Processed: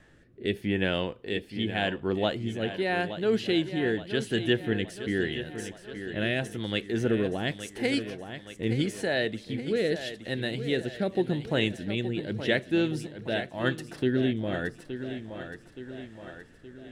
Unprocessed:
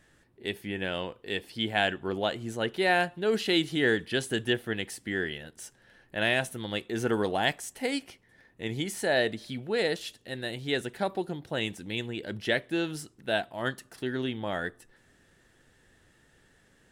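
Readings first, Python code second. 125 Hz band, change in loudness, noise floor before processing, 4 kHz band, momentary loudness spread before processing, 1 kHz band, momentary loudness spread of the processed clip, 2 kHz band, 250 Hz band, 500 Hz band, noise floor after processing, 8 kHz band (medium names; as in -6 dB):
+5.5 dB, +1.0 dB, -64 dBFS, -1.0 dB, 11 LU, -4.0 dB, 13 LU, -2.0 dB, +4.0 dB, +1.5 dB, -53 dBFS, -5.0 dB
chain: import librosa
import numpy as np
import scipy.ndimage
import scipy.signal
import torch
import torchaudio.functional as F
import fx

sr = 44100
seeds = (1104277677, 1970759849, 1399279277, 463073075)

y = fx.rider(x, sr, range_db=3, speed_s=0.5)
y = fx.rotary(y, sr, hz=0.85)
y = fx.echo_feedback(y, sr, ms=871, feedback_pct=50, wet_db=-11.0)
y = fx.dynamic_eq(y, sr, hz=970.0, q=0.72, threshold_db=-46.0, ratio=4.0, max_db=-6)
y = fx.lowpass(y, sr, hz=2800.0, slope=6)
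y = F.gain(torch.from_numpy(y), 6.0).numpy()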